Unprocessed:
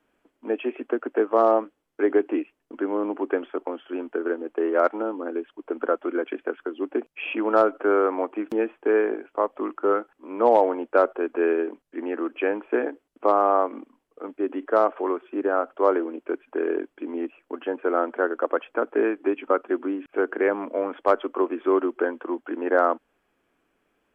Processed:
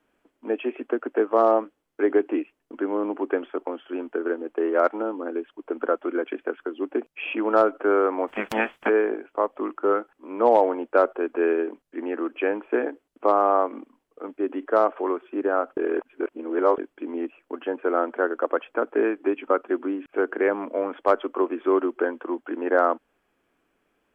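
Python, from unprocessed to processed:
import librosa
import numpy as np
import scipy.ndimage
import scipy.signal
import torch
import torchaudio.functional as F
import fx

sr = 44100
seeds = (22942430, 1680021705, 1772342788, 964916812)

y = fx.spec_clip(x, sr, under_db=26, at=(8.27, 8.88), fade=0.02)
y = fx.edit(y, sr, fx.reverse_span(start_s=15.77, length_s=1.01), tone=tone)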